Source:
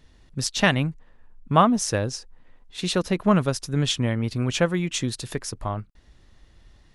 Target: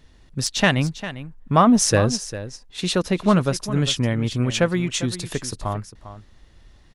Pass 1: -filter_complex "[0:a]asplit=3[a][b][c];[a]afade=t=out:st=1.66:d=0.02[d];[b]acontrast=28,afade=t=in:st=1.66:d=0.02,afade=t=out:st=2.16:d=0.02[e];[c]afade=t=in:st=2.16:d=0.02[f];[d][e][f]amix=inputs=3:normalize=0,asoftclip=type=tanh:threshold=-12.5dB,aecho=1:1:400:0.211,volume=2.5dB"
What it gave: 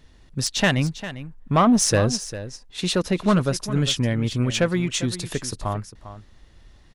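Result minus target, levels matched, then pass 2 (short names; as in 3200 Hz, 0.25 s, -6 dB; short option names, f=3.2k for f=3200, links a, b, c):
soft clip: distortion +10 dB
-filter_complex "[0:a]asplit=3[a][b][c];[a]afade=t=out:st=1.66:d=0.02[d];[b]acontrast=28,afade=t=in:st=1.66:d=0.02,afade=t=out:st=2.16:d=0.02[e];[c]afade=t=in:st=2.16:d=0.02[f];[d][e][f]amix=inputs=3:normalize=0,asoftclip=type=tanh:threshold=-5.5dB,aecho=1:1:400:0.211,volume=2.5dB"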